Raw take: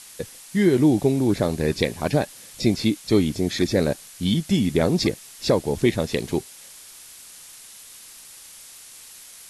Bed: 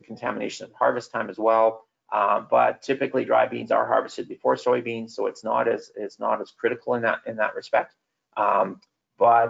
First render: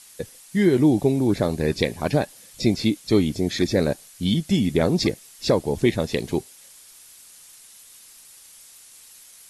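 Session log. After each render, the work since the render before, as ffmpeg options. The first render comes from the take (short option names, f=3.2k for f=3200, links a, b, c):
-af "afftdn=nr=6:nf=-45"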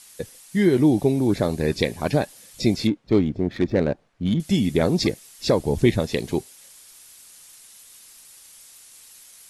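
-filter_complex "[0:a]asettb=1/sr,asplit=3[a][b][c];[a]atrim=end=0.604[d];[b]atrim=start=0.6:end=1.23,asetpts=PTS-STARTPTS,afade=t=in:d=0.004:c=qsin,afade=t=out:st=0.626:d=0.004:c=qsin,bandreject=f=7.2k:w=12[e];[c]atrim=start=1.226[f];[d][e]acrossfade=d=0.004:c1=hsin:c2=qsin[g];[g][f]acrossfade=d=0.004:c1=qsin:c2=hsin,asettb=1/sr,asplit=3[h][i][j];[h]atrim=end=2.874[k];[i]atrim=start=2.87:end=4.4,asetpts=PTS-STARTPTS,afade=t=in:d=0.004:c=qsin,afade=t=out:st=1.526:d=0.004:c=qsin,adynamicsmooth=sensitivity=1:basefreq=1.2k[l];[j]atrim=start=4.396[m];[k][l]acrossfade=d=0.004:c1=hsin:c2=qsin[n];[n][m]acrossfade=d=0.004:c1=qsin:c2=hsin,asettb=1/sr,asplit=3[o][p][q];[o]atrim=end=5.594[r];[p]atrim=start=5.59:end=6,asetpts=PTS-STARTPTS,afade=t=in:d=0.004:c=qsin,afade=t=out:st=0.406:d=0.004:c=qsin,lowshelf=f=140:g=8.5[s];[q]atrim=start=5.996[t];[r][s]acrossfade=d=0.004:c1=hsin:c2=qsin[u];[u][t]acrossfade=d=0.004:c1=qsin:c2=hsin"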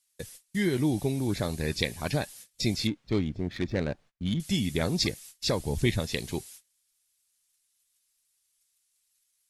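-af "agate=range=-26dB:threshold=-43dB:ratio=16:detection=peak,equalizer=f=410:w=0.35:g=-10.5"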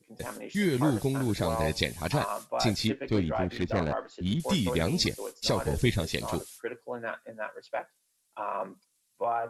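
-filter_complex "[1:a]volume=-12.5dB[a];[0:a][a]amix=inputs=2:normalize=0"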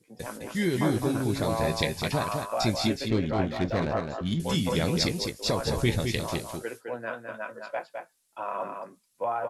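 -filter_complex "[0:a]asplit=2[a][b];[b]adelay=18,volume=-12.5dB[c];[a][c]amix=inputs=2:normalize=0,aecho=1:1:210:0.531"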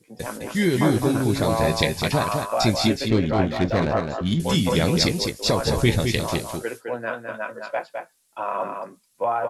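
-af "volume=6dB"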